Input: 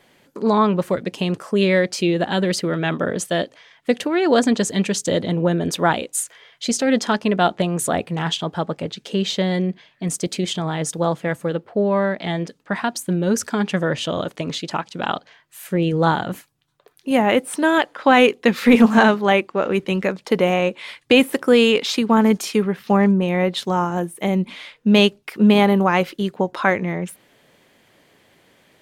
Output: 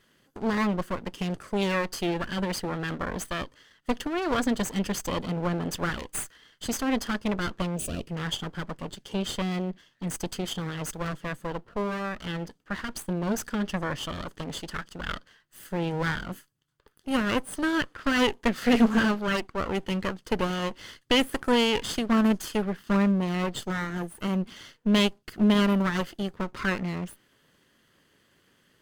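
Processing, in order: comb filter that takes the minimum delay 0.64 ms; time-frequency box 7.76–8.08 s, 720–2300 Hz -14 dB; trim -7 dB

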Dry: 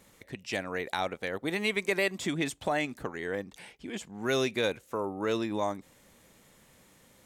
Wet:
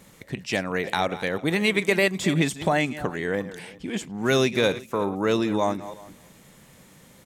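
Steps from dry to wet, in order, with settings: chunks repeated in reverse 180 ms, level -14 dB; peaking EQ 160 Hz +6.5 dB 0.8 oct; on a send: delay 370 ms -22 dB; on the sum: trim +6.5 dB

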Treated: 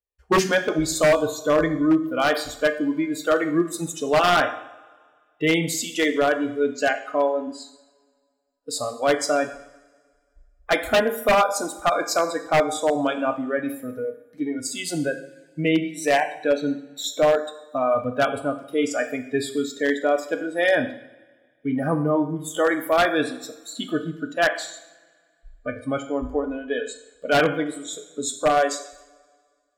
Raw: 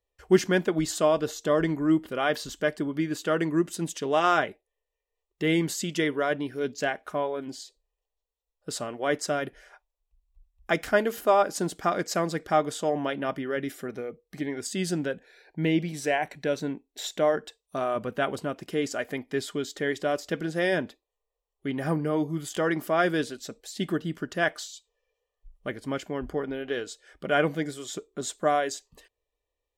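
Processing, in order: spectral noise reduction 20 dB; two-slope reverb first 0.7 s, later 1.9 s, from -18 dB, DRR 6.5 dB; wavefolder -17 dBFS; trim +6 dB

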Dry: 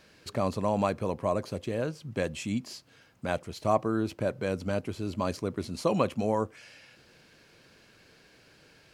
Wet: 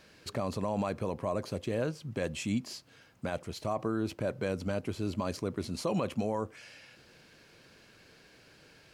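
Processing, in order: peak limiter -21.5 dBFS, peak gain reduction 10 dB

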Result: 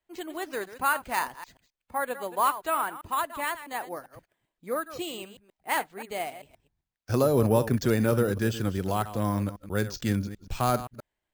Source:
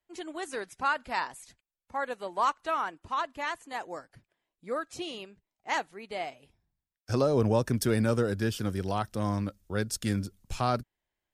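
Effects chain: chunks repeated in reverse 131 ms, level -13 dB; careless resampling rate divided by 4×, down filtered, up hold; trim +2.5 dB

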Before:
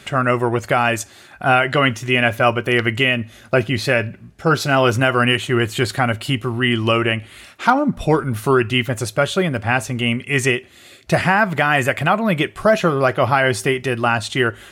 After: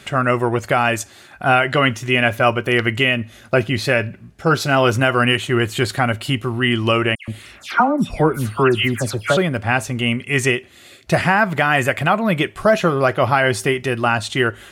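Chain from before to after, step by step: 7.15–9.37 s: phase dispersion lows, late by 129 ms, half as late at 2.3 kHz

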